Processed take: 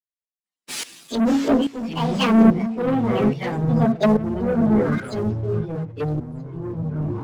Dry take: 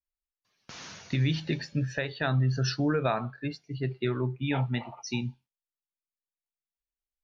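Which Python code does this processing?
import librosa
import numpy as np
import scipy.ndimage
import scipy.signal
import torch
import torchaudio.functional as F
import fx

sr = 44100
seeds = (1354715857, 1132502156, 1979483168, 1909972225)

p1 = fx.pitch_bins(x, sr, semitones=9.5)
p2 = fx.env_lowpass_down(p1, sr, base_hz=390.0, full_db=-26.5)
p3 = fx.high_shelf(p2, sr, hz=5900.0, db=-6.5)
p4 = fx.hum_notches(p3, sr, base_hz=60, count=8)
p5 = fx.leveller(p4, sr, passes=1)
p6 = p5 + fx.echo_stepped(p5, sr, ms=319, hz=380.0, octaves=1.4, feedback_pct=70, wet_db=-7, dry=0)
p7 = fx.leveller(p6, sr, passes=2)
p8 = fx.tremolo_shape(p7, sr, shape='saw_up', hz=1.2, depth_pct=85)
p9 = fx.rider(p8, sr, range_db=3, speed_s=2.0)
p10 = p8 + F.gain(torch.from_numpy(p9), 2.0).numpy()
p11 = fx.echo_pitch(p10, sr, ms=303, semitones=-6, count=3, db_per_echo=-6.0)
p12 = fx.band_widen(p11, sr, depth_pct=40)
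y = F.gain(torch.from_numpy(p12), 3.5).numpy()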